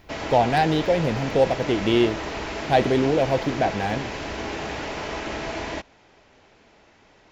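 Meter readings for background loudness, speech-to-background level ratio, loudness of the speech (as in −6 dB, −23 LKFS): −30.5 LKFS, 8.0 dB, −22.5 LKFS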